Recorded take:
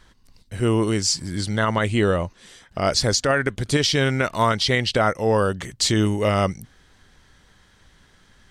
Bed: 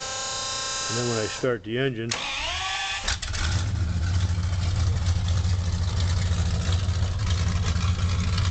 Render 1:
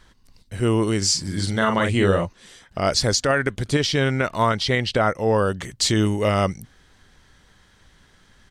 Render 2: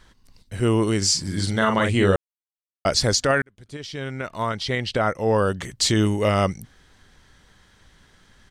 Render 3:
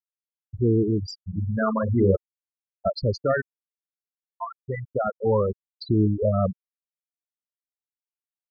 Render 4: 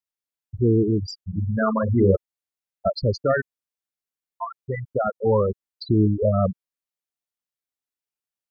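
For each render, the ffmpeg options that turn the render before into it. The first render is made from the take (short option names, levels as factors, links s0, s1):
-filter_complex "[0:a]asplit=3[s0][s1][s2];[s0]afade=t=out:st=1.01:d=0.02[s3];[s1]asplit=2[s4][s5];[s5]adelay=41,volume=0.596[s6];[s4][s6]amix=inputs=2:normalize=0,afade=t=in:st=1.01:d=0.02,afade=t=out:st=2.24:d=0.02[s7];[s2]afade=t=in:st=2.24:d=0.02[s8];[s3][s7][s8]amix=inputs=3:normalize=0,asettb=1/sr,asplit=3[s9][s10][s11];[s9]atrim=end=3.684[s12];[s10]atrim=start=3.68:end=5.47,asetpts=PTS-STARTPTS,afade=t=in:d=0.004:c=qsin,afade=t=out:st=1.786:d=0.004:c=qsin,highshelf=f=3700:g=-5.5[s13];[s11]atrim=start=5.466[s14];[s12][s13]acrossfade=d=0.004:c1=hsin:c2=qsin[s15];[s15][s14]acrossfade=d=0.004:c1=qsin:c2=hsin"
-filter_complex "[0:a]asplit=4[s0][s1][s2][s3];[s0]atrim=end=2.16,asetpts=PTS-STARTPTS,afade=t=out:st=2.156:d=0.004:c=hsin[s4];[s1]atrim=start=2.16:end=2.85,asetpts=PTS-STARTPTS,volume=0[s5];[s2]atrim=start=2.85:end=3.42,asetpts=PTS-STARTPTS,afade=t=in:d=0.004:c=hsin,afade=t=out:st=0.566:d=0.004:c=hsin[s6];[s3]atrim=start=3.42,asetpts=PTS-STARTPTS,afade=t=in:d=2.06[s7];[s4][s5][s6][s7]concat=n=4:v=0:a=1"
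-af "afftfilt=real='re*gte(hypot(re,im),0.355)':imag='im*gte(hypot(re,im),0.355)':win_size=1024:overlap=0.75,lowpass=f=1400:p=1"
-af "volume=1.26"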